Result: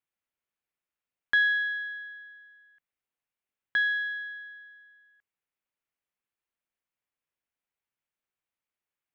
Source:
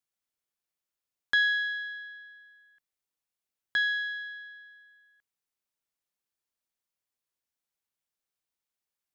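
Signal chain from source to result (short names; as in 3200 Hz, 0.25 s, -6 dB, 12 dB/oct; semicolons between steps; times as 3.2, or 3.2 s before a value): resonant high shelf 3400 Hz -8.5 dB, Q 1.5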